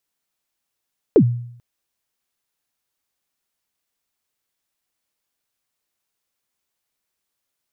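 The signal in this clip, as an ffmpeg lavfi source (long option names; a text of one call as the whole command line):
ffmpeg -f lavfi -i "aevalsrc='0.531*pow(10,-3*t/0.67)*sin(2*PI*(500*0.074/log(120/500)*(exp(log(120/500)*min(t,0.074)/0.074)-1)+120*max(t-0.074,0)))':duration=0.44:sample_rate=44100" out.wav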